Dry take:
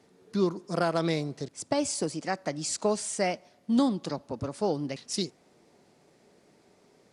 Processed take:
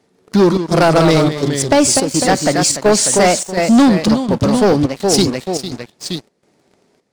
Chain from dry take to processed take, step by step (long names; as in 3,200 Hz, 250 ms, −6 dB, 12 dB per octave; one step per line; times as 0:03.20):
delay with pitch and tempo change per echo 145 ms, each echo −1 semitone, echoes 2, each echo −6 dB
square-wave tremolo 1.4 Hz, depth 65%, duty 80%
leveller curve on the samples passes 3
level +8 dB